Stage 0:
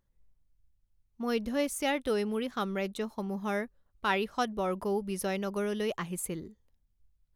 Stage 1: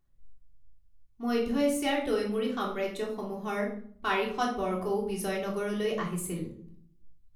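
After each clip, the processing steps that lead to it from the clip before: reverberation RT60 0.55 s, pre-delay 3 ms, DRR -2.5 dB; trim -3.5 dB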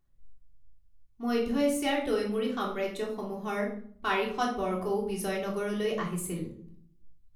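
no audible change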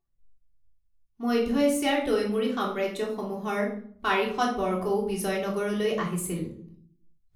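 spectral noise reduction 13 dB; trim +3.5 dB

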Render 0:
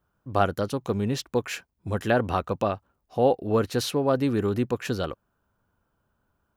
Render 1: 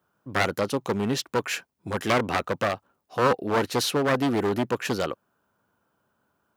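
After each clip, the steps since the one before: one-sided wavefolder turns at -22 dBFS; Bessel high-pass 200 Hz, order 2; trim +4 dB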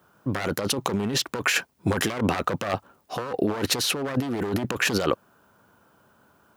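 compressor with a negative ratio -32 dBFS, ratio -1; trim +6 dB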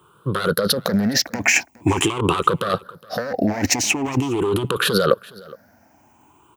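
drifting ripple filter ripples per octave 0.66, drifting +0.45 Hz, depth 17 dB; delay 415 ms -22.5 dB; trim +2.5 dB

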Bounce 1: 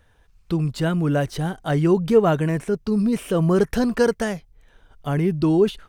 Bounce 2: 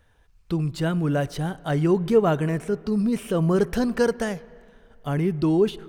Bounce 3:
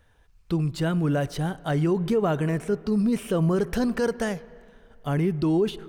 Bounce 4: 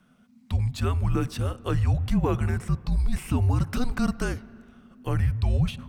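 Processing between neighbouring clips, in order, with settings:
reverberation RT60 2.3 s, pre-delay 18 ms, DRR 19.5 dB; trim -2.5 dB
peak limiter -15 dBFS, peak gain reduction 7.5 dB
frequency shift -260 Hz

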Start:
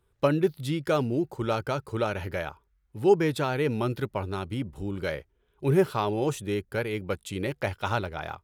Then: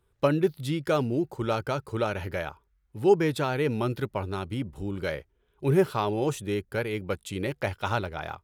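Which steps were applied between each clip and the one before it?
no audible change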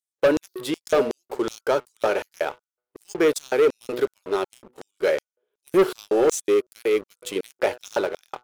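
de-hum 123.2 Hz, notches 12; LFO high-pass square 2.7 Hz 430–6200 Hz; waveshaping leveller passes 3; trim -4.5 dB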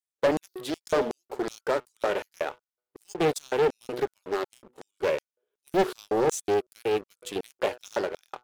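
loudspeaker Doppler distortion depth 0.66 ms; trim -4.5 dB

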